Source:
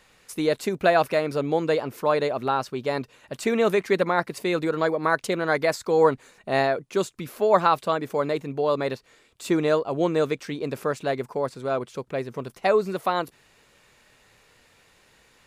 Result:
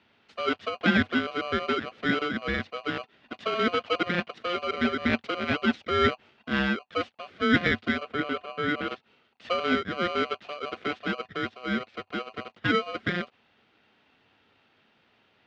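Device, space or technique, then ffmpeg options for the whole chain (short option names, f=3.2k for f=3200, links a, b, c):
ring modulator pedal into a guitar cabinet: -filter_complex "[0:a]aeval=exprs='val(0)*sgn(sin(2*PI*880*n/s))':c=same,highpass=79,equalizer=f=97:t=q:w=4:g=5,equalizer=f=230:t=q:w=4:g=9,equalizer=f=990:t=q:w=4:g=-7,lowpass=f=3.6k:w=0.5412,lowpass=f=3.6k:w=1.3066,asettb=1/sr,asplit=3[a][b][c];[a]atrim=end=8.034[d];[b]atrim=start=8.03:end=8.88,asetpts=PTS-STARTPTS,afade=t=in:d=0.004:c=qsin,afade=t=out:st=0.846:d=0.004:c=qsin,equalizer=f=5.5k:w=1.3:g=-7[e];[c]atrim=start=8.876[f];[d][e]acrossfade=d=0.004:c1=hsin:c2=qsin[g];[g][f]acrossfade=d=0.004:c1=qsin:c2=hsin,volume=-4.5dB"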